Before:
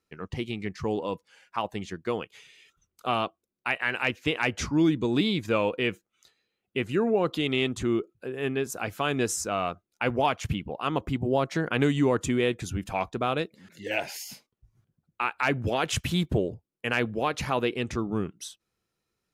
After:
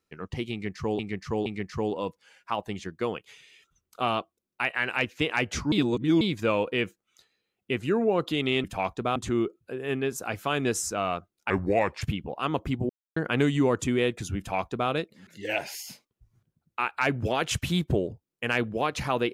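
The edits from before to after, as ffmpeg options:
-filter_complex "[0:a]asplit=11[a][b][c][d][e][f][g][h][i][j][k];[a]atrim=end=0.992[l];[b]atrim=start=0.518:end=0.992[m];[c]atrim=start=0.518:end=4.782[n];[d]atrim=start=4.778:end=5.272,asetpts=PTS-STARTPTS,areverse[o];[e]atrim=start=5.268:end=7.702[p];[f]atrim=start=12.798:end=13.322[q];[g]atrim=start=7.698:end=10.044[r];[h]atrim=start=10.04:end=10.43,asetpts=PTS-STARTPTS,asetrate=33516,aresample=44100,atrim=end_sample=22630,asetpts=PTS-STARTPTS[s];[i]atrim=start=10.426:end=11.31,asetpts=PTS-STARTPTS,afade=t=out:st=0.88:d=0.004:c=hsin[t];[j]atrim=start=11.31:end=11.58,asetpts=PTS-STARTPTS,volume=0[u];[k]atrim=start=11.58,asetpts=PTS-STARTPTS,afade=t=in:d=0.004:c=hsin[v];[l][m]acrossfade=d=0.004:c1=hsin:c2=hsin[w];[w][n]acrossfade=d=0.004:c1=hsin:c2=hsin[x];[x][o]acrossfade=d=0.004:c1=hsin:c2=hsin[y];[y][p]acrossfade=d=0.004:c1=hsin:c2=hsin[z];[z][q]acrossfade=d=0.004:c1=hsin:c2=hsin[aa];[aa][r]acrossfade=d=0.004:c1=hsin:c2=hsin[ab];[ab][s]acrossfade=d=0.004:c1=hsin:c2=hsin[ac];[t][u][v]concat=n=3:v=0:a=1[ad];[ac][ad]acrossfade=d=0.004:c1=hsin:c2=hsin"

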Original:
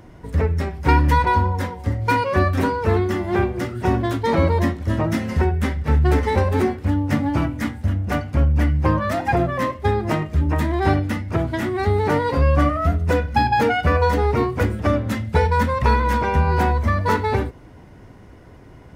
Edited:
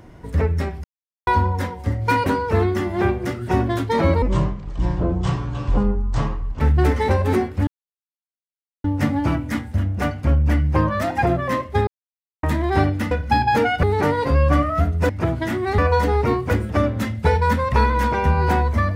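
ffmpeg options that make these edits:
-filter_complex "[0:a]asplit=13[a][b][c][d][e][f][g][h][i][j][k][l][m];[a]atrim=end=0.84,asetpts=PTS-STARTPTS,afade=t=out:st=0.836:d=0.004:c=hsin[n];[b]atrim=start=0.84:end=1.27,asetpts=PTS-STARTPTS,volume=0[o];[c]atrim=start=1.27:end=2.262,asetpts=PTS-STARTPTS,afade=t=in:d=0.004:c=hsin[p];[d]atrim=start=2.598:end=4.564[q];[e]atrim=start=4.56:end=5.87,asetpts=PTS-STARTPTS,asetrate=24255,aresample=44100,atrim=end_sample=105038,asetpts=PTS-STARTPTS[r];[f]atrim=start=5.866:end=6.94,asetpts=PTS-STARTPTS,afade=t=out:st=1.07:d=0.004:c=hsin,apad=pad_dur=1.17[s];[g]atrim=start=6.94:end=9.97,asetpts=PTS-STARTPTS,afade=t=in:d=0.004:c=hsin,afade=t=out:st=3.026:d=0.004:c=hsin[t];[h]atrim=start=9.97:end=10.53,asetpts=PTS-STARTPTS,volume=0[u];[i]atrim=start=10.53:end=11.212,asetpts=PTS-STARTPTS,afade=t=in:d=0.004:c=hsin[v];[j]atrim=start=13.158:end=13.882[w];[k]atrim=start=11.898:end=13.162[x];[l]atrim=start=11.208:end=11.902[y];[m]atrim=start=13.878[z];[n][o][p]concat=n=3:v=0:a=1[aa];[aa][q]acrossfade=d=0.004:c1=hsin:c2=hsin[ab];[ab][r]acrossfade=d=0.004:c1=hsin:c2=hsin[ac];[s][t][u][v]concat=n=4:v=0:a=1[ad];[ac][ad]acrossfade=d=0.004:c1=hsin:c2=hsin[ae];[ae][w]acrossfade=d=0.004:c1=hsin:c2=hsin[af];[af][x]acrossfade=d=0.004:c1=hsin:c2=hsin[ag];[ag][y]acrossfade=d=0.004:c1=hsin:c2=hsin[ah];[ah][z]acrossfade=d=0.004:c1=hsin:c2=hsin"

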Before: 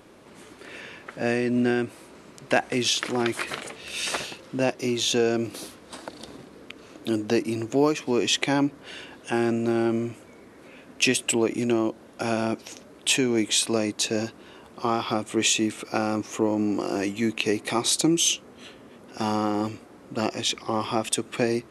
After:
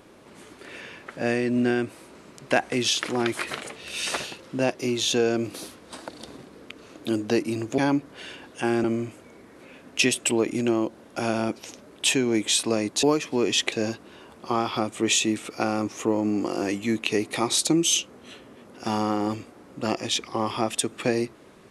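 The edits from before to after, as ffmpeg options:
-filter_complex "[0:a]asplit=5[a][b][c][d][e];[a]atrim=end=7.782[f];[b]atrim=start=8.468:end=9.532[g];[c]atrim=start=9.868:end=14.062[h];[d]atrim=start=7.778:end=8.472[i];[e]atrim=start=14.058[j];[f][g]acrossfade=d=0.004:c1=hsin:c2=hsin[k];[k][h]acrossfade=d=0.004:c1=hsin:c2=hsin[l];[l][i]acrossfade=d=0.004:c1=hsin:c2=hsin[m];[m][j]acrossfade=d=0.004:c1=hsin:c2=hsin"

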